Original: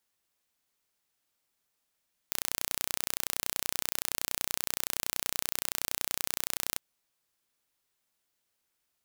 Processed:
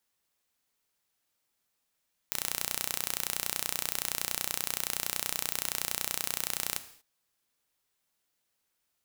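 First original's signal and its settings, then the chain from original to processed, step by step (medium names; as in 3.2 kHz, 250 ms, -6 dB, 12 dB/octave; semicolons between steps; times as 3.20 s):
pulse train 30.6 per s, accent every 0, -3 dBFS 4.46 s
gated-style reverb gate 260 ms falling, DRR 10.5 dB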